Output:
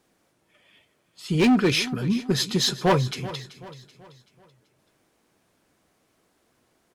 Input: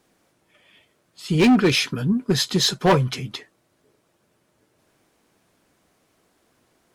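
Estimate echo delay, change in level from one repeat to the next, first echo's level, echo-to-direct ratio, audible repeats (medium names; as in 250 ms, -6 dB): 382 ms, -7.5 dB, -16.0 dB, -15.0 dB, 3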